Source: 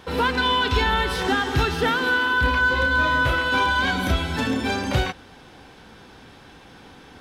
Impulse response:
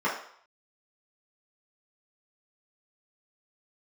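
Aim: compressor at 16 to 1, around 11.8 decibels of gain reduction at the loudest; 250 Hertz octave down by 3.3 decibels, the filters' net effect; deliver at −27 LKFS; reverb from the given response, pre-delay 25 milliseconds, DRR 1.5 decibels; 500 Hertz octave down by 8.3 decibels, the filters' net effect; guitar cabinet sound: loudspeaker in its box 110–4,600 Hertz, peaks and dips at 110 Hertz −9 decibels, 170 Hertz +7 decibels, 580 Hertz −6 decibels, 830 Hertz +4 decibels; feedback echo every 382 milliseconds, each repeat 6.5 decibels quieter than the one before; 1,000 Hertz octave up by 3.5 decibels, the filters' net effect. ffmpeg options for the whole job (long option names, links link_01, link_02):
-filter_complex "[0:a]equalizer=frequency=250:width_type=o:gain=-3.5,equalizer=frequency=500:width_type=o:gain=-8,equalizer=frequency=1000:width_type=o:gain=4.5,acompressor=threshold=-27dB:ratio=16,aecho=1:1:382|764|1146|1528|1910|2292:0.473|0.222|0.105|0.0491|0.0231|0.0109,asplit=2[link_01][link_02];[1:a]atrim=start_sample=2205,adelay=25[link_03];[link_02][link_03]afir=irnorm=-1:irlink=0,volume=-14.5dB[link_04];[link_01][link_04]amix=inputs=2:normalize=0,highpass=110,equalizer=frequency=110:width_type=q:width=4:gain=-9,equalizer=frequency=170:width_type=q:width=4:gain=7,equalizer=frequency=580:width_type=q:width=4:gain=-6,equalizer=frequency=830:width_type=q:width=4:gain=4,lowpass=frequency=4600:width=0.5412,lowpass=frequency=4600:width=1.3066,volume=-0.5dB"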